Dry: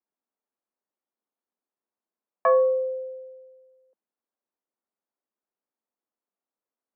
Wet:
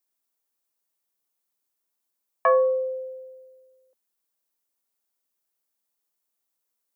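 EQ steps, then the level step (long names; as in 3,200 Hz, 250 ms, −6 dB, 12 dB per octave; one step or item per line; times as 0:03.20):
spectral tilt +4.5 dB per octave
low-shelf EQ 350 Hz +12 dB
0.0 dB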